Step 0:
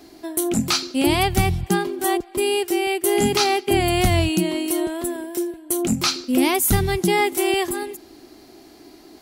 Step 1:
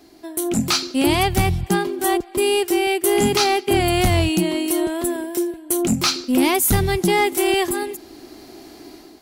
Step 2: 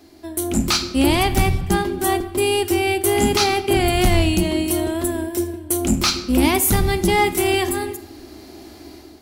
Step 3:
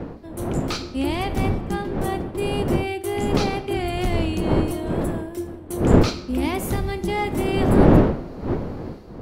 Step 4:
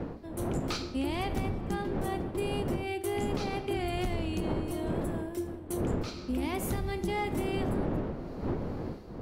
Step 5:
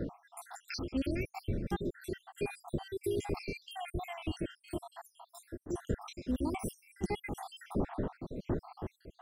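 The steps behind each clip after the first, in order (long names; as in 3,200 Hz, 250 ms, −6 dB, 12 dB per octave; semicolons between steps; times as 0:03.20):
automatic gain control gain up to 9 dB; soft clipping −4.5 dBFS, distortion −22 dB; level −3.5 dB
sub-octave generator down 2 octaves, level −6 dB; on a send at −10 dB: convolution reverb RT60 0.90 s, pre-delay 3 ms
wind on the microphone 360 Hz −16 dBFS; high-shelf EQ 4,900 Hz −10.5 dB; level −7 dB
downward compressor 10 to 1, threshold −23 dBFS, peak gain reduction 15 dB; level −4.5 dB
time-frequency cells dropped at random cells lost 72%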